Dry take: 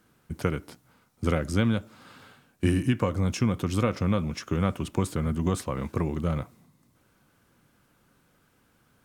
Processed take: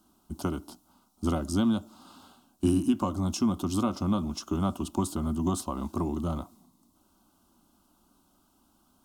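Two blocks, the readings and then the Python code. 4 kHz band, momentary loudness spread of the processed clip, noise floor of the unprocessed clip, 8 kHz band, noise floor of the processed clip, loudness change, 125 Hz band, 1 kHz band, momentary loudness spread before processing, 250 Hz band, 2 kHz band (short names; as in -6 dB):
-1.5 dB, 8 LU, -66 dBFS, +2.0 dB, -67 dBFS, -1.5 dB, -6.0 dB, 0.0 dB, 6 LU, +0.5 dB, -12.0 dB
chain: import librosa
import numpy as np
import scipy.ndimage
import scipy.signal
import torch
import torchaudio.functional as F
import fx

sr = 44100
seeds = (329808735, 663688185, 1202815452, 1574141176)

y = fx.peak_eq(x, sr, hz=2300.0, db=-15.0, octaves=0.22)
y = fx.fixed_phaser(y, sr, hz=480.0, stages=6)
y = F.gain(torch.from_numpy(y), 2.5).numpy()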